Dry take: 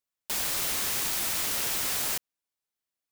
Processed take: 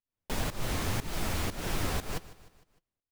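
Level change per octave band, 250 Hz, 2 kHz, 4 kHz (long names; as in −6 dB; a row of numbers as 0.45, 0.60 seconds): +8.0, −3.5, −7.5 decibels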